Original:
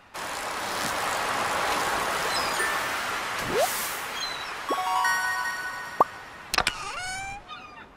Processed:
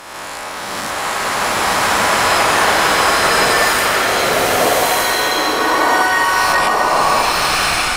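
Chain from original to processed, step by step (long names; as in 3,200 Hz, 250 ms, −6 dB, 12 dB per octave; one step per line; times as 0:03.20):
peak hold with a rise ahead of every peak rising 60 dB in 1.27 s
boost into a limiter +12 dB
slow-attack reverb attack 1,220 ms, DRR −8 dB
level −10 dB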